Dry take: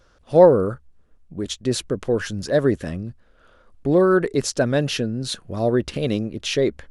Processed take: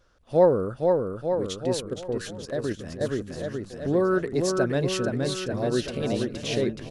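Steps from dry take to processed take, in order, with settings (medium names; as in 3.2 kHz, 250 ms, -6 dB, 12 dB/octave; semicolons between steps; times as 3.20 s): on a send: bouncing-ball echo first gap 470 ms, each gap 0.9×, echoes 5; 1.80–3.01 s: on the sum: level held to a coarse grid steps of 10 dB; trim -6.5 dB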